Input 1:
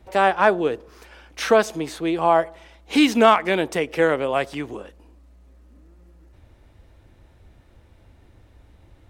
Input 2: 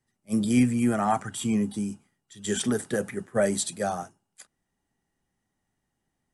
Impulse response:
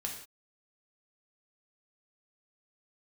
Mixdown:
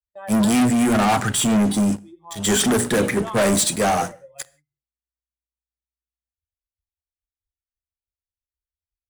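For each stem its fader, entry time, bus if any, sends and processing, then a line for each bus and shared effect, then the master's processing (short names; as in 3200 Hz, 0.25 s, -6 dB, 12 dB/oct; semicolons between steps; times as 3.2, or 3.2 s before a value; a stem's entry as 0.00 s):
-19.0 dB, 0.00 s, send -5 dB, per-bin expansion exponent 3; ripple EQ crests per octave 1.1, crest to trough 8 dB
-2.5 dB, 0.00 s, send -19 dB, notches 60/120/180/240/300/360/420/480/540/600 Hz; sample leveller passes 5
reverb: on, pre-delay 3 ms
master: gate with hold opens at -43 dBFS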